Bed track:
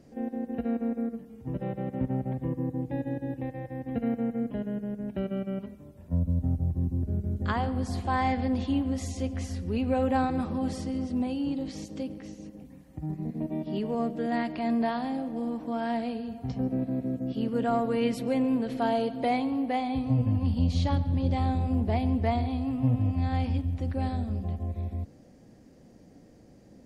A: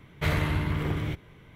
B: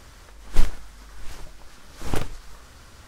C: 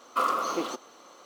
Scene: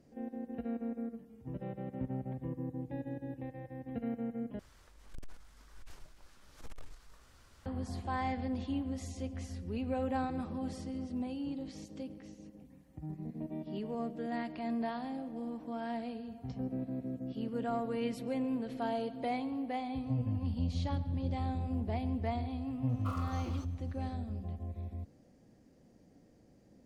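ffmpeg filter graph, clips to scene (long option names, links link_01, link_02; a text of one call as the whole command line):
ffmpeg -i bed.wav -i cue0.wav -i cue1.wav -i cue2.wav -filter_complex "[0:a]volume=-8.5dB[link_01];[2:a]aeval=exprs='(tanh(20*val(0)+0.3)-tanh(0.3))/20':channel_layout=same[link_02];[link_01]asplit=2[link_03][link_04];[link_03]atrim=end=4.594[link_05];[link_02]atrim=end=3.07,asetpts=PTS-STARTPTS,volume=-13dB[link_06];[link_04]atrim=start=7.656[link_07];[3:a]atrim=end=1.25,asetpts=PTS-STARTPTS,volume=-17.5dB,afade=type=in:duration=0.004:curve=hsin,afade=type=out:start_time=1.246:duration=0.004:curve=hsin,adelay=22890[link_08];[link_05][link_06]acrossfade=duration=0.004:curve1=hsin:curve2=hsin[link_09];[link_09][link_07]acrossfade=duration=0.004:curve1=hsin:curve2=hsin[link_10];[link_10][link_08]amix=inputs=2:normalize=0" out.wav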